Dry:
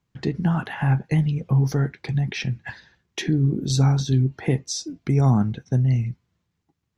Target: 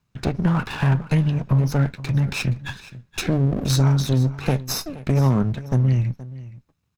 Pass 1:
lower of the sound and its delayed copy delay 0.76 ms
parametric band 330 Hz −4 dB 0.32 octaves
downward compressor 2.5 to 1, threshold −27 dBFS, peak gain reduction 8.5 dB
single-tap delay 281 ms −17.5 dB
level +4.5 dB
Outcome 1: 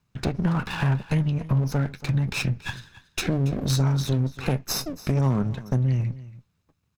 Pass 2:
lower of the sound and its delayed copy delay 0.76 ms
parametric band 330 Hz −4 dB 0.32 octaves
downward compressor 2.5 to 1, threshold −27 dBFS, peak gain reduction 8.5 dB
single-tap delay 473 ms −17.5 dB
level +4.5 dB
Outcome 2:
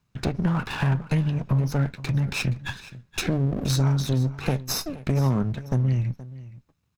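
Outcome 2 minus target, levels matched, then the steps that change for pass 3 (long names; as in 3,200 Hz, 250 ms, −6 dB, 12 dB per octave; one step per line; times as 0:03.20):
downward compressor: peak gain reduction +4 dB
change: downward compressor 2.5 to 1, threshold −20 dBFS, peak gain reduction 4.5 dB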